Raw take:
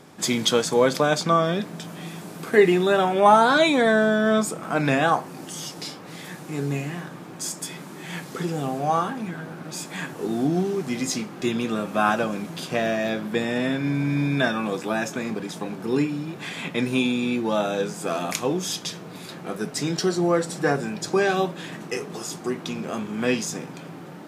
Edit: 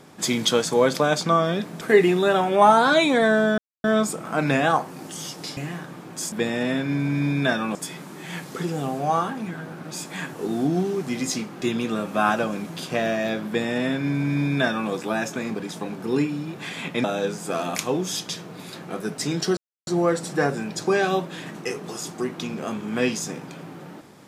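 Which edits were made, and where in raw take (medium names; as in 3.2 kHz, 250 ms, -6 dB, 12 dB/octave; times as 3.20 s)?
1.81–2.45 s: delete
4.22 s: insert silence 0.26 s
5.95–6.80 s: delete
13.27–14.70 s: copy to 7.55 s
16.84–17.60 s: delete
20.13 s: insert silence 0.30 s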